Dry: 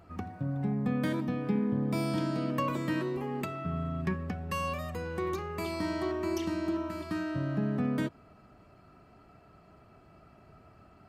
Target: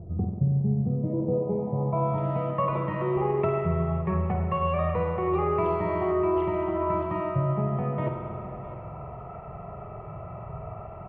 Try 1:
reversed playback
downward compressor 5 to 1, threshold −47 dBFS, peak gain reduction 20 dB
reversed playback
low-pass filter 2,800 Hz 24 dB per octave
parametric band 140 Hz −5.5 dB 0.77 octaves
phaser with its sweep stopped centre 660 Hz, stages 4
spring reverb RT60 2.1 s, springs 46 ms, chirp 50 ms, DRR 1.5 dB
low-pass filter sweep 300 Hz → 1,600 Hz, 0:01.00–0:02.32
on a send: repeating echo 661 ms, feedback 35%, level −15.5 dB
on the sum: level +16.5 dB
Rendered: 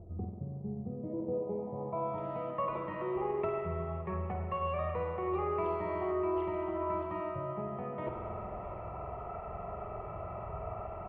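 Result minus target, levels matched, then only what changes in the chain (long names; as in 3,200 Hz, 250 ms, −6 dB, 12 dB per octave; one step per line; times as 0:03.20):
downward compressor: peak gain reduction +7 dB; 125 Hz band −4.5 dB
change: downward compressor 5 to 1, threshold −38 dBFS, peak gain reduction 13 dB
change: parametric band 140 Hz +6 dB 0.77 octaves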